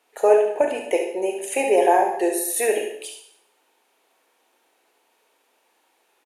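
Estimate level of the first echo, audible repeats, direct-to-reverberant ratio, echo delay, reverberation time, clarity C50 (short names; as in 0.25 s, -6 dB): -8.5 dB, 1, 1.5 dB, 69 ms, 0.65 s, 4.0 dB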